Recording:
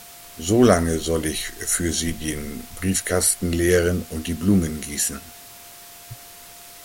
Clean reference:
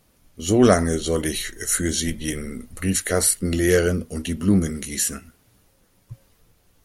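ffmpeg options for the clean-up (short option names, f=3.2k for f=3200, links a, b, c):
-af "bandreject=f=700:w=30,afftdn=nr=17:nf=-43"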